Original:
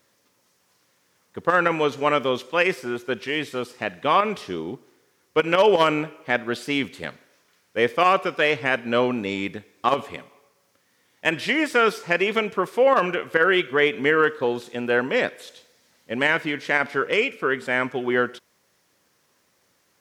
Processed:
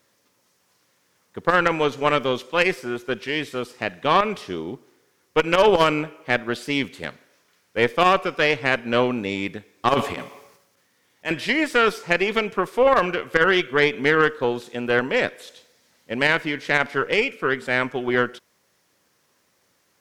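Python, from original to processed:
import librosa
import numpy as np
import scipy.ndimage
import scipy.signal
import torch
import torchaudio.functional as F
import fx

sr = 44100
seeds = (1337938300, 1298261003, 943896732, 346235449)

y = fx.transient(x, sr, attack_db=-9, sustain_db=11, at=(9.95, 11.31), fade=0.02)
y = fx.cheby_harmonics(y, sr, harmonics=(4, 6), levels_db=(-15, -28), full_scale_db=-5.0)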